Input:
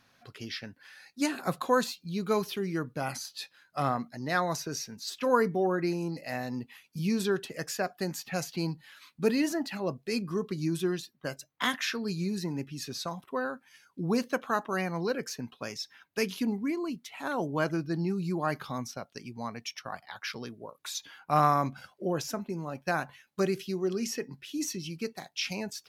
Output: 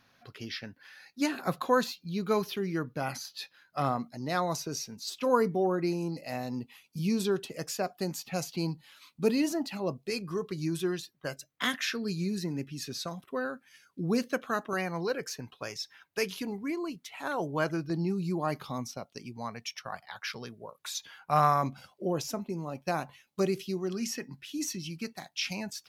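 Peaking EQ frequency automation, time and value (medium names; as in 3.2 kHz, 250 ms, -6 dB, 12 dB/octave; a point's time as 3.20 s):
peaking EQ -8.5 dB 0.47 oct
8.4 kHz
from 3.85 s 1.7 kHz
from 10.10 s 230 Hz
from 11.33 s 910 Hz
from 14.73 s 230 Hz
from 17.90 s 1.6 kHz
from 19.37 s 290 Hz
from 21.63 s 1.6 kHz
from 23.77 s 440 Hz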